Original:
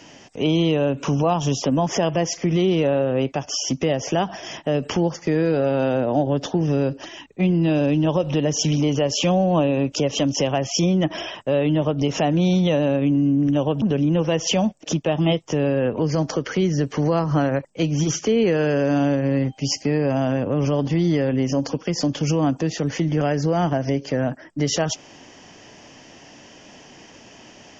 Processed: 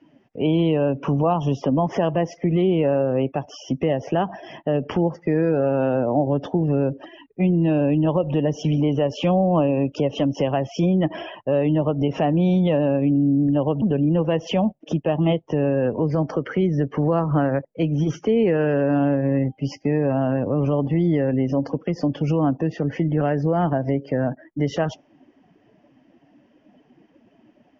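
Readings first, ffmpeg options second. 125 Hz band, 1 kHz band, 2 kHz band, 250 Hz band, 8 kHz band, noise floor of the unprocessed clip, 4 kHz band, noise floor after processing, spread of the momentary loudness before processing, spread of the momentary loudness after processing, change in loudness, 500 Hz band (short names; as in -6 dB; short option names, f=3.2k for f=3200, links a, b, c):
0.0 dB, 0.0 dB, -3.5 dB, 0.0 dB, n/a, -47 dBFS, -9.5 dB, -59 dBFS, 5 LU, 6 LU, -0.5 dB, 0.0 dB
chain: -af "afftdn=nr=17:nf=-36,lowpass=2.2k"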